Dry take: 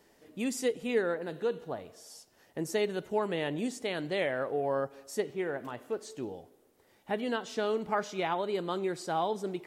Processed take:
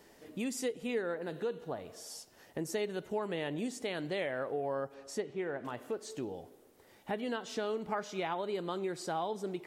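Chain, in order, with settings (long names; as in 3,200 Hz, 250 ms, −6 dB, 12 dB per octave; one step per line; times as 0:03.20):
downward compressor 2 to 1, threshold −43 dBFS, peak gain reduction 11 dB
0:04.94–0:05.66: high-frequency loss of the air 53 metres
level +4 dB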